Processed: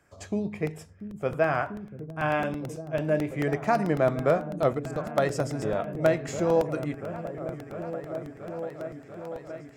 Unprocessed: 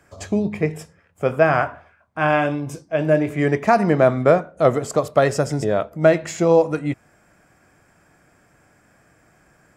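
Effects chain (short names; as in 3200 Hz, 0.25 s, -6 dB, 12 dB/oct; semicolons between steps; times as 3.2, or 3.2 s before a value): 4.73–5.18 level quantiser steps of 21 dB; repeats that get brighter 0.69 s, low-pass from 200 Hz, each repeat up 1 oct, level -6 dB; crackling interface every 0.11 s, samples 64, repeat, from 0.67; gain -8.5 dB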